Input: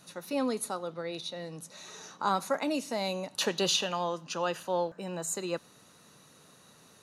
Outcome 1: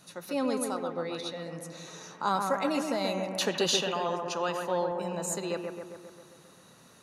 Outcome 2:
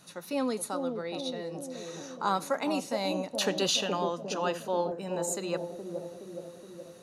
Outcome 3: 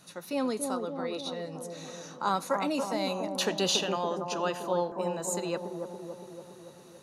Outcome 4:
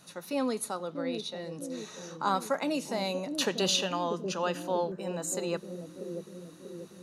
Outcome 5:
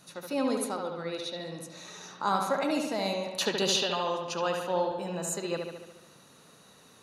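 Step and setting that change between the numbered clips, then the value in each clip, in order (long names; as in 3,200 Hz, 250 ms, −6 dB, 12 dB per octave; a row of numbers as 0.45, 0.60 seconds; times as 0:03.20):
bucket-brigade delay, delay time: 133, 420, 283, 639, 72 milliseconds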